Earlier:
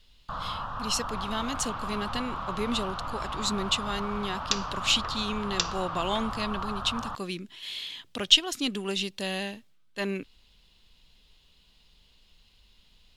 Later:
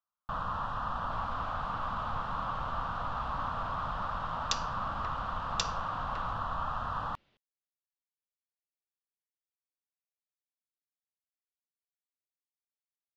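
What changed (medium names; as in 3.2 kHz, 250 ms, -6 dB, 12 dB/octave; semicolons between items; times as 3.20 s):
speech: muted; second sound -5.5 dB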